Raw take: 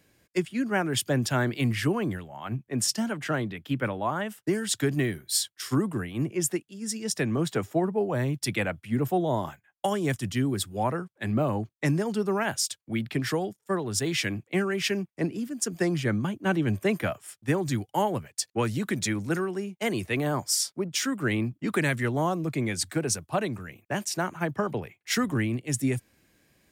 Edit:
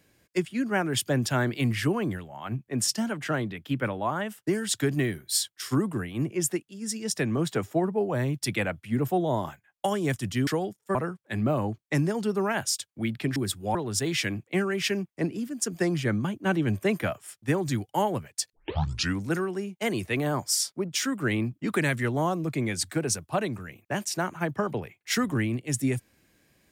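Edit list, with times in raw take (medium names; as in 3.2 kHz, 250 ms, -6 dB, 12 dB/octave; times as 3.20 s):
10.47–10.86 s: swap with 13.27–13.75 s
18.53 s: tape start 0.68 s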